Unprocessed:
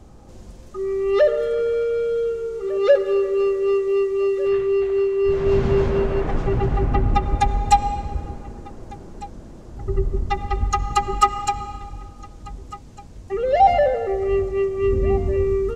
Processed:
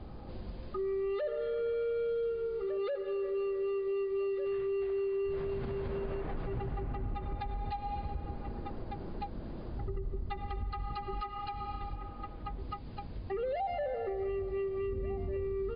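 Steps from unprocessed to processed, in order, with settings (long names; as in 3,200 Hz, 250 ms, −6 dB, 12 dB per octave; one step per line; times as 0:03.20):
0:11.95–0:12.59: bass and treble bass −4 dB, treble −13 dB
downward compressor 2.5 to 1, threshold −36 dBFS, peak gain reduction 17.5 dB
brickwall limiter −28 dBFS, peak gain reduction 9.5 dB
MP3 64 kbit/s 11,025 Hz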